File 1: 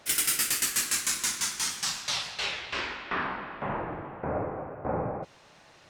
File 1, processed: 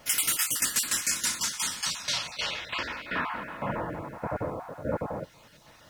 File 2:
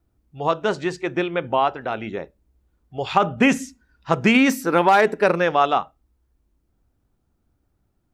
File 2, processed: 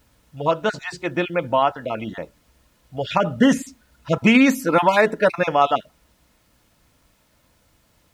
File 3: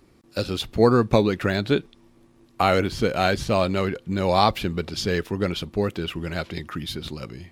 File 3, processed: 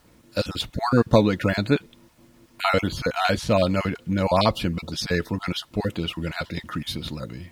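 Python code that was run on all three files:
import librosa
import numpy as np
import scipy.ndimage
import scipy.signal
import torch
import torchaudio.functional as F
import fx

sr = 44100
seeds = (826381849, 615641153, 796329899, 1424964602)

y = fx.spec_dropout(x, sr, seeds[0], share_pct=20)
y = fx.dmg_noise_colour(y, sr, seeds[1], colour='pink', level_db=-62.0)
y = fx.notch_comb(y, sr, f0_hz=390.0)
y = F.gain(torch.from_numpy(y), 2.5).numpy()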